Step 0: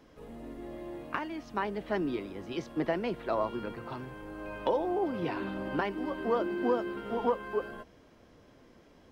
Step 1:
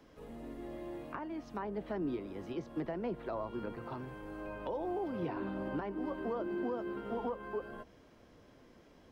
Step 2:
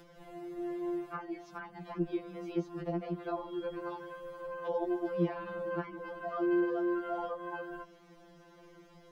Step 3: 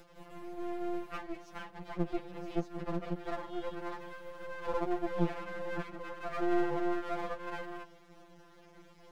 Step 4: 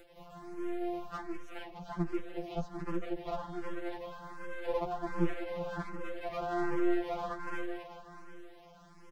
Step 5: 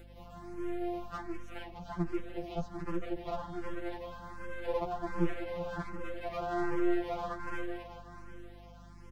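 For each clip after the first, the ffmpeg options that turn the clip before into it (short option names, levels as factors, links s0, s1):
-filter_complex "[0:a]acrossover=split=150|1400[s0][s1][s2];[s1]alimiter=level_in=1.5:limit=0.0631:level=0:latency=1:release=166,volume=0.668[s3];[s2]acompressor=threshold=0.00178:ratio=6[s4];[s0][s3][s4]amix=inputs=3:normalize=0,volume=0.794"
-af "acompressor=mode=upward:threshold=0.002:ratio=2.5,afftfilt=real='re*2.83*eq(mod(b,8),0)':imag='im*2.83*eq(mod(b,8),0)':win_size=2048:overlap=0.75,volume=1.58"
-af "aeval=exprs='max(val(0),0)':c=same,volume=1.5"
-filter_complex "[0:a]aecho=1:1:374|748|1122|1496|1870:0.299|0.134|0.0605|0.0272|0.0122,asplit=2[s0][s1];[s1]afreqshift=1.3[s2];[s0][s2]amix=inputs=2:normalize=1,volume=1.33"
-af "aeval=exprs='val(0)+0.00251*(sin(2*PI*50*n/s)+sin(2*PI*2*50*n/s)/2+sin(2*PI*3*50*n/s)/3+sin(2*PI*4*50*n/s)/4+sin(2*PI*5*50*n/s)/5)':c=same"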